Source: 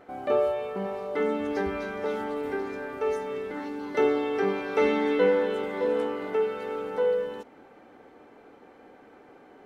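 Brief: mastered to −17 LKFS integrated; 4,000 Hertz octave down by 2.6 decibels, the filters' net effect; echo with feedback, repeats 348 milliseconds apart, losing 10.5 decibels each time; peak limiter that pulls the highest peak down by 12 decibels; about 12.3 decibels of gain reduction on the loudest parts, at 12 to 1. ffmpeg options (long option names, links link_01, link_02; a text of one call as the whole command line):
ffmpeg -i in.wav -af "equalizer=frequency=4000:width_type=o:gain=-3.5,acompressor=threshold=-30dB:ratio=12,alimiter=level_in=6dB:limit=-24dB:level=0:latency=1,volume=-6dB,aecho=1:1:348|696|1044:0.299|0.0896|0.0269,volume=21dB" out.wav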